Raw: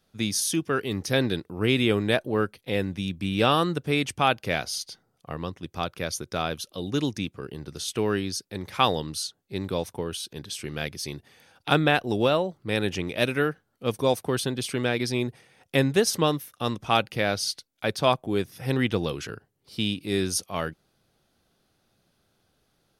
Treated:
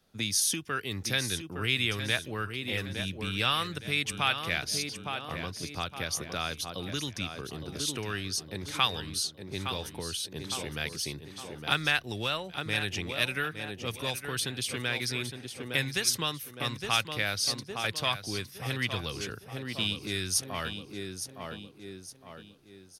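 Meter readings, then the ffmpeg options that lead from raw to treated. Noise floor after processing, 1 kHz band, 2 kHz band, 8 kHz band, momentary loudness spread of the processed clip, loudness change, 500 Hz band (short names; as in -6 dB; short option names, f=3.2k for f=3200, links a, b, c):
-51 dBFS, -7.0 dB, -1.0 dB, +0.5 dB, 11 LU, -4.5 dB, -12.0 dB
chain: -filter_complex "[0:a]aecho=1:1:862|1724|2586|3448:0.316|0.12|0.0457|0.0174,acrossover=split=100|1300[a][b][c];[b]acompressor=threshold=-36dB:ratio=10[d];[a][d][c]amix=inputs=3:normalize=0"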